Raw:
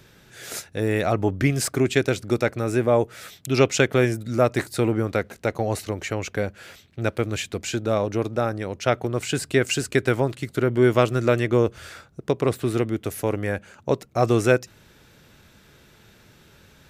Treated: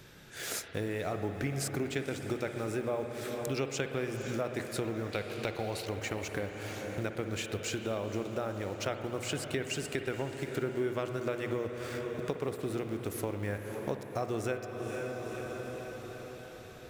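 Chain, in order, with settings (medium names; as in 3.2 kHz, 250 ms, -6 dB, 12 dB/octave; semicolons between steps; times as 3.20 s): in parallel at -7 dB: word length cut 6-bit, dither none; on the sum: hum notches 60/120/180/240 Hz; on a send: echo that smears into a reverb 503 ms, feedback 54%, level -14.5 dB; on the sum: compression 4:1, threshold -33 dBFS, peak gain reduction 20 dB; 5.12–5.86 s: high-order bell 3.4 kHz +9 dB 1.2 oct; spring tank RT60 3.4 s, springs 58 ms, chirp 75 ms, DRR 6.5 dB; trim -1.5 dB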